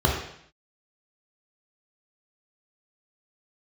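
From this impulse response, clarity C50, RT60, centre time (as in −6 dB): 3.5 dB, 0.65 s, 40 ms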